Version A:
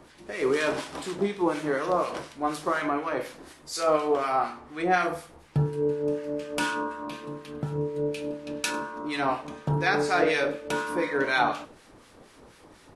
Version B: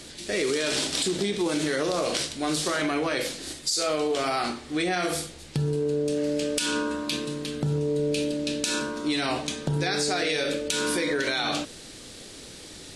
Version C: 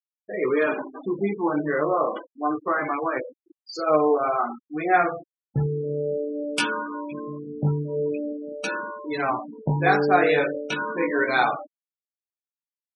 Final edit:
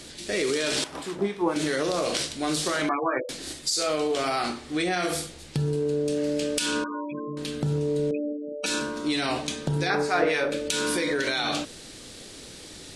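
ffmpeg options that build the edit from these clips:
-filter_complex "[0:a]asplit=2[a][b];[2:a]asplit=3[c][d][e];[1:a]asplit=6[f][g][h][i][j][k];[f]atrim=end=0.842[l];[a]atrim=start=0.838:end=1.562[m];[g]atrim=start=1.558:end=2.892[n];[c]atrim=start=2.888:end=3.292[o];[h]atrim=start=3.288:end=6.842[p];[d]atrim=start=6.838:end=7.372[q];[i]atrim=start=7.368:end=8.112[r];[e]atrim=start=8.108:end=8.662[s];[j]atrim=start=8.658:end=9.902[t];[b]atrim=start=9.898:end=10.522[u];[k]atrim=start=10.518[v];[l][m]acrossfade=d=0.004:c1=hsin:c2=hsin[w];[w][n]acrossfade=d=0.004:c1=hsin:c2=hsin[x];[x][o]acrossfade=d=0.004:c1=hsin:c2=hsin[y];[y][p]acrossfade=d=0.004:c1=hsin:c2=hsin[z];[z][q]acrossfade=d=0.004:c1=hsin:c2=hsin[aa];[aa][r]acrossfade=d=0.004:c1=hsin:c2=hsin[ab];[ab][s]acrossfade=d=0.004:c1=hsin:c2=hsin[ac];[ac][t]acrossfade=d=0.004:c1=hsin:c2=hsin[ad];[ad][u]acrossfade=d=0.004:c1=hsin:c2=hsin[ae];[ae][v]acrossfade=d=0.004:c1=hsin:c2=hsin"

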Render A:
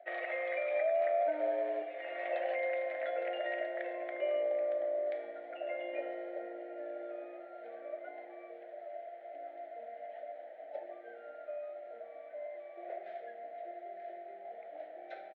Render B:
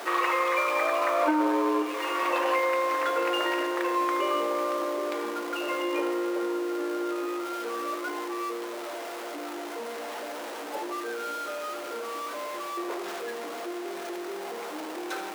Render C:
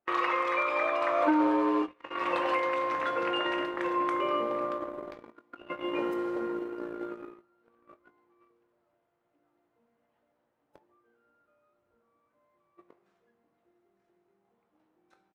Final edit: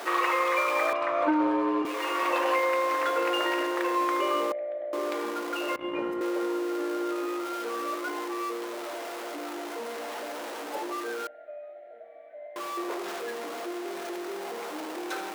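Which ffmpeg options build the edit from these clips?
-filter_complex "[2:a]asplit=2[a][b];[0:a]asplit=2[c][d];[1:a]asplit=5[e][f][g][h][i];[e]atrim=end=0.932[j];[a]atrim=start=0.928:end=1.852[k];[f]atrim=start=1.848:end=4.522[l];[c]atrim=start=4.518:end=4.932[m];[g]atrim=start=4.928:end=5.762[n];[b]atrim=start=5.758:end=6.212[o];[h]atrim=start=6.208:end=11.272[p];[d]atrim=start=11.268:end=12.562[q];[i]atrim=start=12.558[r];[j][k]acrossfade=d=0.004:c1=hsin:c2=hsin[s];[s][l]acrossfade=d=0.004:c1=hsin:c2=hsin[t];[t][m]acrossfade=d=0.004:c1=hsin:c2=hsin[u];[u][n]acrossfade=d=0.004:c1=hsin:c2=hsin[v];[v][o]acrossfade=d=0.004:c1=hsin:c2=hsin[w];[w][p]acrossfade=d=0.004:c1=hsin:c2=hsin[x];[x][q]acrossfade=d=0.004:c1=hsin:c2=hsin[y];[y][r]acrossfade=d=0.004:c1=hsin:c2=hsin"

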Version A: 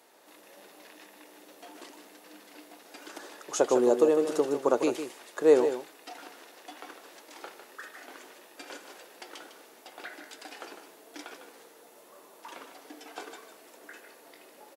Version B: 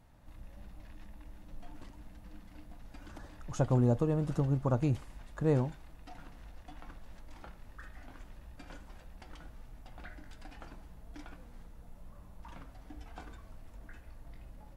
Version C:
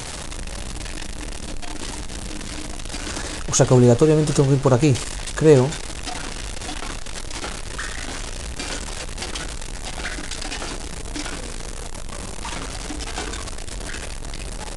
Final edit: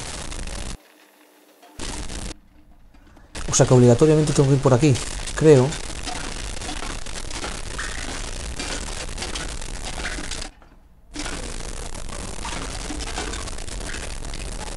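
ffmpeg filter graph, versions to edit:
-filter_complex "[1:a]asplit=2[a][b];[2:a]asplit=4[c][d][e][f];[c]atrim=end=0.752[g];[0:a]atrim=start=0.748:end=1.792[h];[d]atrim=start=1.788:end=2.322[i];[a]atrim=start=2.318:end=3.352[j];[e]atrim=start=3.348:end=10.51[k];[b]atrim=start=10.41:end=11.21[l];[f]atrim=start=11.11[m];[g][h]acrossfade=d=0.004:c1=hsin:c2=hsin[n];[n][i]acrossfade=d=0.004:c1=hsin:c2=hsin[o];[o][j]acrossfade=d=0.004:c1=hsin:c2=hsin[p];[p][k]acrossfade=d=0.004:c1=hsin:c2=hsin[q];[q][l]acrossfade=d=0.1:c1=tri:c2=tri[r];[r][m]acrossfade=d=0.1:c1=tri:c2=tri"

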